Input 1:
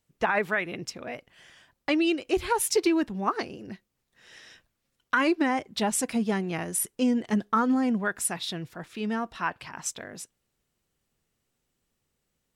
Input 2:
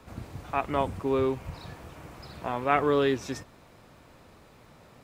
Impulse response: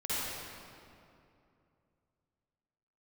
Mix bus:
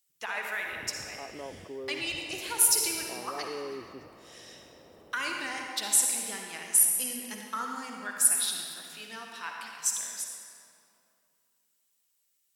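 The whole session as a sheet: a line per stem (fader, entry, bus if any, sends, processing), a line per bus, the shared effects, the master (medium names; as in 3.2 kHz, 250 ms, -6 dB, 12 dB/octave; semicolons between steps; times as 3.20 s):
+2.5 dB, 0.00 s, send -5 dB, differentiator
-14.0 dB, 0.65 s, no send, band-pass filter 470 Hz, Q 1.5; level flattener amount 50%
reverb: on, RT60 2.6 s, pre-delay 46 ms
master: bass shelf 87 Hz +11 dB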